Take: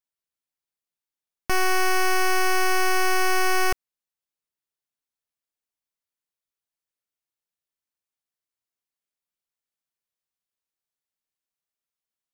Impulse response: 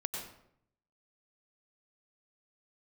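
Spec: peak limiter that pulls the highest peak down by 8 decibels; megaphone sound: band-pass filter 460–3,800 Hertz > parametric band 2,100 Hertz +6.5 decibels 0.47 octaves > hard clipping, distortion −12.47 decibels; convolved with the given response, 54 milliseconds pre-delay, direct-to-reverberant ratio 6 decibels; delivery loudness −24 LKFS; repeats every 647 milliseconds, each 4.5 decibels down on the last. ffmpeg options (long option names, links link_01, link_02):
-filter_complex "[0:a]alimiter=level_in=3dB:limit=-24dB:level=0:latency=1,volume=-3dB,aecho=1:1:647|1294|1941|2588|3235|3882|4529|5176|5823:0.596|0.357|0.214|0.129|0.0772|0.0463|0.0278|0.0167|0.01,asplit=2[link_01][link_02];[1:a]atrim=start_sample=2205,adelay=54[link_03];[link_02][link_03]afir=irnorm=-1:irlink=0,volume=-7.5dB[link_04];[link_01][link_04]amix=inputs=2:normalize=0,highpass=460,lowpass=3800,equalizer=frequency=2100:width_type=o:width=0.47:gain=6.5,asoftclip=type=hard:threshold=-28.5dB,volume=9dB"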